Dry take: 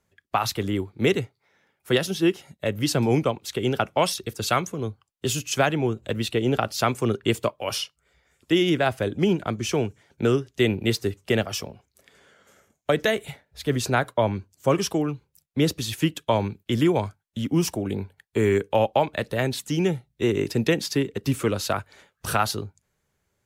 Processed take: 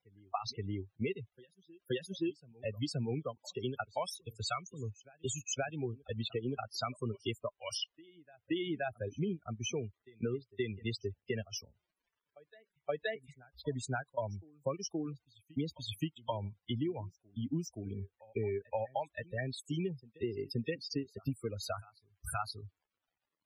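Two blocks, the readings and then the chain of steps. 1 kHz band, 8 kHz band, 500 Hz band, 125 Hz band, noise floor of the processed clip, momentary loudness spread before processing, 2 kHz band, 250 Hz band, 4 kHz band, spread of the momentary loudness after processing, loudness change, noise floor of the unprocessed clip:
−15.0 dB, −12.5 dB, −15.0 dB, −13.0 dB, below −85 dBFS, 8 LU, −15.5 dB, −14.5 dB, −13.0 dB, 7 LU, −14.5 dB, −76 dBFS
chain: spectral dynamics exaggerated over time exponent 2
downward compressor 6 to 1, threshold −33 dBFS, peak gain reduction 14 dB
surface crackle 240 per second −61 dBFS
on a send: backwards echo 524 ms −23 dB
on the sum: spectral peaks only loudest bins 32

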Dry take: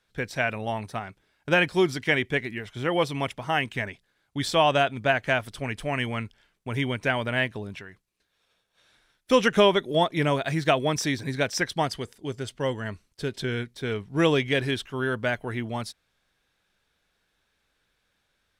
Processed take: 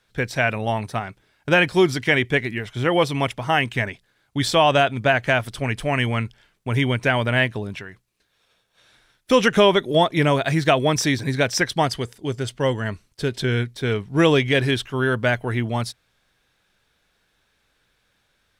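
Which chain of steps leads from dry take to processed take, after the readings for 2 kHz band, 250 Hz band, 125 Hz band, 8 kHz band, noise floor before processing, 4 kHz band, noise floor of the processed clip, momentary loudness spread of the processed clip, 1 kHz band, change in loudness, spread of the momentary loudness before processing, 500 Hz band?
+5.0 dB, +5.5 dB, +7.5 dB, +6.0 dB, −74 dBFS, +5.0 dB, −68 dBFS, 11 LU, +5.0 dB, +5.0 dB, 13 LU, +5.0 dB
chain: parametric band 120 Hz +4.5 dB 0.21 octaves
in parallel at 0 dB: brickwall limiter −14 dBFS, peak gain reduction 8 dB

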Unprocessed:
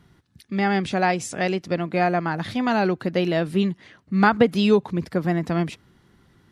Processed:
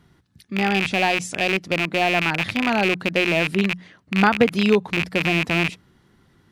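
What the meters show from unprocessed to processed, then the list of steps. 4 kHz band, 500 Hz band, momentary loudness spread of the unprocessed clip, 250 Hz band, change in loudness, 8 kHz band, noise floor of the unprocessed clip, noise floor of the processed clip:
+8.0 dB, 0.0 dB, 8 LU, −0.5 dB, +2.0 dB, +2.5 dB, −60 dBFS, −59 dBFS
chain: loose part that buzzes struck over −31 dBFS, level −10 dBFS
mains-hum notches 60/120/180 Hz

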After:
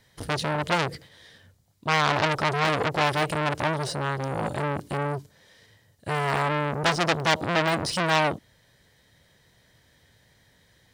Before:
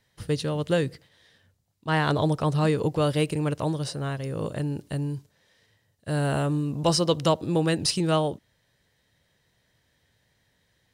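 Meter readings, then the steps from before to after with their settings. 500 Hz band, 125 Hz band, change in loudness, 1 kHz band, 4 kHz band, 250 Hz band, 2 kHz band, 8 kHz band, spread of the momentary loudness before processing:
−1.0 dB, −3.5 dB, +0.5 dB, +6.5 dB, +2.5 dB, −4.5 dB, +9.0 dB, −2.0 dB, 8 LU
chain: de-essing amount 80%
notch filter 2,700 Hz, Q 16
saturating transformer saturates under 3,100 Hz
level +8 dB

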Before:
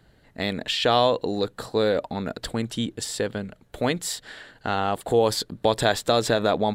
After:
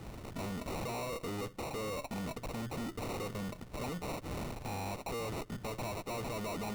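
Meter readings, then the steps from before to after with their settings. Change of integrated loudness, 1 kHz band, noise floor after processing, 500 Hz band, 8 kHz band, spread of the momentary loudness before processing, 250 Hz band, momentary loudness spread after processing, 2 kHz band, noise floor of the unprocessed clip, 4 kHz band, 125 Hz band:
−15.0 dB, −15.0 dB, −52 dBFS, −17.0 dB, −14.0 dB, 10 LU, −12.0 dB, 3 LU, −14.5 dB, −59 dBFS, −19.5 dB, −9.0 dB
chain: downward compressor 4 to 1, threshold −39 dBFS, peak gain reduction 19.5 dB
tube saturation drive 52 dB, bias 0.55
decimation without filtering 27×
level +15 dB

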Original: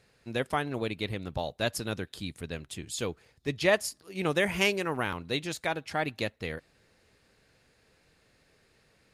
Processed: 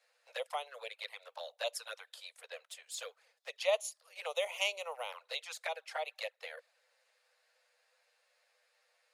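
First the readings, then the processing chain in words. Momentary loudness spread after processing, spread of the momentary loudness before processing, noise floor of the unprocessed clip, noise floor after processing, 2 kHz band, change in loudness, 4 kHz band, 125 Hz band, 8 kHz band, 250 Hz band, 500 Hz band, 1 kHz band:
15 LU, 13 LU, −67 dBFS, −77 dBFS, −9.5 dB, −8.0 dB, −5.0 dB, below −40 dB, −6.0 dB, below −40 dB, −7.5 dB, −8.0 dB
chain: flanger swept by the level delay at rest 10.7 ms, full sweep at −26 dBFS
Butterworth high-pass 490 Hz 96 dB per octave
level −3.5 dB

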